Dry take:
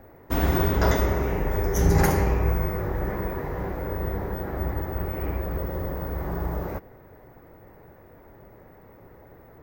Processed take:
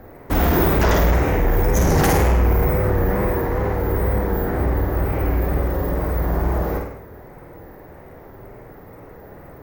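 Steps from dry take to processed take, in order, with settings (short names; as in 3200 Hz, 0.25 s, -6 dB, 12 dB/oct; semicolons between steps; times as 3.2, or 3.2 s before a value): flutter echo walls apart 8.8 m, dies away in 0.67 s; wow and flutter 71 cents; sine folder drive 9 dB, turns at -6 dBFS; gain -6 dB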